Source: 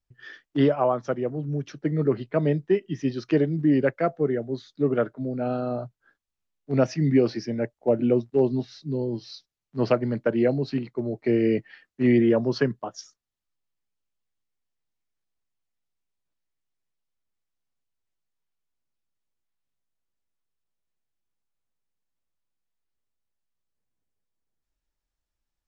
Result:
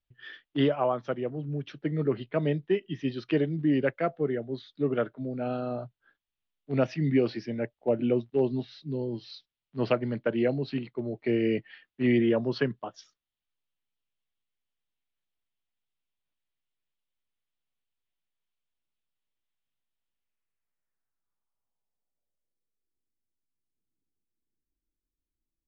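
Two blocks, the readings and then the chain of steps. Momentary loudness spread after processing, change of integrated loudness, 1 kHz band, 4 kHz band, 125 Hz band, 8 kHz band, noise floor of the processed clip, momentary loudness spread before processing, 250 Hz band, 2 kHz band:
10 LU, -4.5 dB, -4.0 dB, -0.5 dB, -4.5 dB, n/a, under -85 dBFS, 10 LU, -4.5 dB, -1.5 dB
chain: low-pass sweep 3300 Hz -> 320 Hz, 20.09–23.05; gain -4.5 dB

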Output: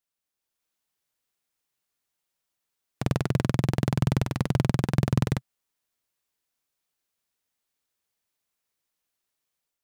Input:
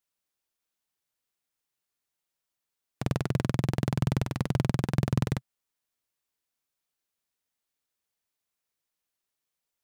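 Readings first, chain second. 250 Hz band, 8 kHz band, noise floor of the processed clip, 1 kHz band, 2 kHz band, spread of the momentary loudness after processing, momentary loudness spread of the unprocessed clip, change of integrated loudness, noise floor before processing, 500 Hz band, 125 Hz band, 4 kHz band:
+3.0 dB, +3.0 dB, under -85 dBFS, +3.0 dB, +3.0 dB, 5 LU, 5 LU, +3.0 dB, under -85 dBFS, +3.0 dB, +3.0 dB, +3.0 dB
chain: AGC gain up to 5.5 dB; gain -2.5 dB

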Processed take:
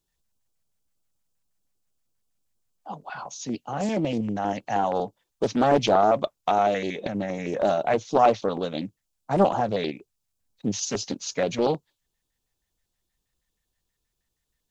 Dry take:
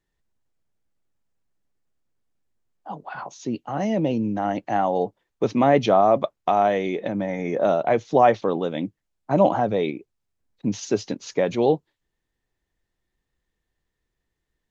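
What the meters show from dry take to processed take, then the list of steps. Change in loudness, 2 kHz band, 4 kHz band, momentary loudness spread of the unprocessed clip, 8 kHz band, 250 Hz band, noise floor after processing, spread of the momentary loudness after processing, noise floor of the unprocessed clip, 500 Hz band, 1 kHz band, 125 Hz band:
-2.5 dB, -2.0 dB, +3.0 dB, 13 LU, n/a, -3.0 dB, -80 dBFS, 14 LU, -80 dBFS, -3.0 dB, -2.0 dB, -3.0 dB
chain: high shelf 3600 Hz +11.5 dB; LFO notch square 6.3 Hz 350–1900 Hz; Doppler distortion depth 0.42 ms; gain -2 dB

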